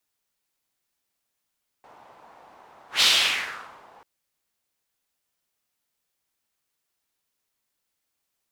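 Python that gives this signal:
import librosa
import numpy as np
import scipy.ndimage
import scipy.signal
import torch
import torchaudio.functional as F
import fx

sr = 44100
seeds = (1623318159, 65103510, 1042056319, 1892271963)

y = fx.whoosh(sr, seeds[0], length_s=2.19, peak_s=1.18, rise_s=0.14, fall_s=0.93, ends_hz=850.0, peak_hz=3700.0, q=2.4, swell_db=34.0)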